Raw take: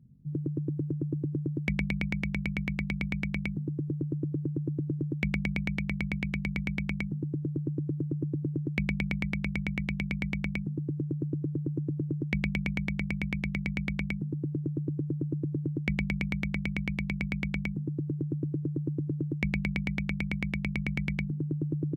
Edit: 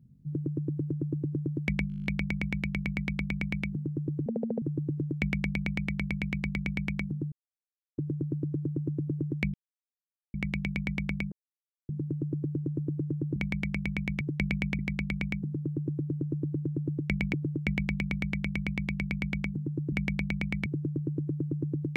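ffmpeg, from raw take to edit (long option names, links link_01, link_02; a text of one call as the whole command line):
ffmpeg -i in.wav -filter_complex "[0:a]asplit=22[link_01][link_02][link_03][link_04][link_05][link_06][link_07][link_08][link_09][link_10][link_11][link_12][link_13][link_14][link_15][link_16][link_17][link_18][link_19][link_20][link_21][link_22];[link_01]atrim=end=1.902[link_23];[link_02]atrim=start=1.878:end=1.902[link_24];[link_03]atrim=start=1.878:end=1.902[link_25];[link_04]atrim=start=1.878:end=1.902[link_26];[link_05]atrim=start=1.878:end=1.902[link_27];[link_06]atrim=start=1.878:end=1.902[link_28];[link_07]atrim=start=1.878:end=1.902[link_29];[link_08]atrim=start=1.878:end=1.902[link_30];[link_09]atrim=start=1.878:end=1.902[link_31];[link_10]atrim=start=1.878:end=4.084[link_32];[link_11]atrim=start=4.08:end=4.63,asetpts=PTS-STARTPTS,asetrate=67473,aresample=44100[link_33];[link_12]atrim=start=4.626:end=7.33,asetpts=PTS-STARTPTS,afade=type=out:start_time=2.7:duration=0.004:curve=hsin,apad=pad_dur=0.66[link_34];[link_13]atrim=start=7.33:end=8.89,asetpts=PTS-STARTPTS,afade=type=in:duration=0.004:curve=hsin,afade=type=out:start_time=1.556:duration=0.004:curve=hsin[link_35];[link_14]atrim=start=8.89:end=9.69,asetpts=PTS-STARTPTS,volume=0[link_36];[link_15]atrim=start=9.69:end=10.67,asetpts=PTS-STARTPTS,afade=type=in:duration=0.004:curve=hsin,afade=type=out:start_time=0.976:duration=0.004:curve=hsin,apad=pad_dur=0.57[link_37];[link_16]atrim=start=10.67:end=12.142,asetpts=PTS-STARTPTS,afade=type=in:duration=0.004:curve=hsin[link_38];[link_17]atrim=start=12.718:end=13.572[link_39];[link_18]atrim=start=12.138:end=12.722[link_40];[link_19]atrim=start=13.568:end=16.112[link_41];[link_20]atrim=start=15.538:end=18.132[link_42];[link_21]atrim=start=5.288:end=6.032[link_43];[link_22]atrim=start=18.128[link_44];[link_23][link_24]acrossfade=duration=0.004:curve1=hsin:curve2=hsin[link_45];[link_45][link_25]acrossfade=duration=0.004:curve1=hsin:curve2=hsin[link_46];[link_46][link_26]acrossfade=duration=0.004:curve1=hsin:curve2=hsin[link_47];[link_47][link_27]acrossfade=duration=0.004:curve1=hsin:curve2=hsin[link_48];[link_48][link_28]acrossfade=duration=0.004:curve1=hsin:curve2=hsin[link_49];[link_49][link_29]acrossfade=duration=0.004:curve1=hsin:curve2=hsin[link_50];[link_50][link_30]acrossfade=duration=0.004:curve1=hsin:curve2=hsin[link_51];[link_51][link_31]acrossfade=duration=0.004:curve1=hsin:curve2=hsin[link_52];[link_52][link_32]acrossfade=duration=0.004:curve1=hsin:curve2=hsin[link_53];[link_53][link_33]acrossfade=duration=0.004:curve1=hsin:curve2=hsin[link_54];[link_34][link_35][link_36][link_37][link_38]concat=n=5:v=0:a=1[link_55];[link_54][link_55]acrossfade=duration=0.004:curve1=hsin:curve2=hsin[link_56];[link_56][link_39]acrossfade=duration=0.004:curve1=hsin:curve2=hsin[link_57];[link_57][link_40]acrossfade=duration=0.004:curve1=hsin:curve2=hsin[link_58];[link_58][link_41]acrossfade=duration=0.004:curve1=hsin:curve2=hsin[link_59];[link_59][link_42]acrossfade=duration=0.004:curve1=hsin:curve2=hsin[link_60];[link_60][link_43]acrossfade=duration=0.004:curve1=hsin:curve2=hsin[link_61];[link_61][link_44]acrossfade=duration=0.004:curve1=hsin:curve2=hsin" out.wav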